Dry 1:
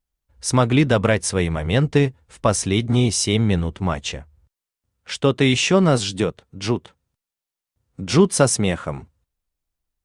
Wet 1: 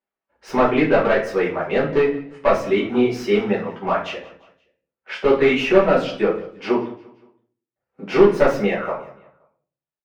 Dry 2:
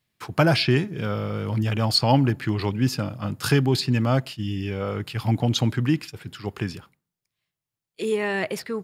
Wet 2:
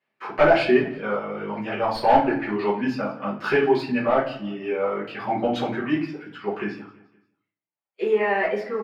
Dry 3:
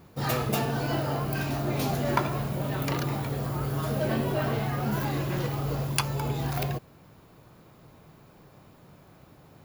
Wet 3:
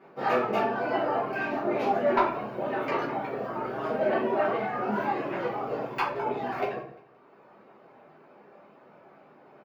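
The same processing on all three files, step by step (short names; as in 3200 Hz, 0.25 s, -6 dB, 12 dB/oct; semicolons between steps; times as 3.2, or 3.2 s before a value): self-modulated delay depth 0.089 ms; HPF 450 Hz 12 dB/oct; reverb removal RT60 1.1 s; bell 3900 Hz -8 dB 0.77 oct; in parallel at -11 dB: wrapped overs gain 15 dB; on the sum: short-mantissa float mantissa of 4-bit; one-sided clip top -17 dBFS; air absorption 320 m; on a send: feedback echo 0.174 s, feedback 46%, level -21 dB; on the sum: shoebox room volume 43 m³, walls mixed, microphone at 1.4 m; gain -1.5 dB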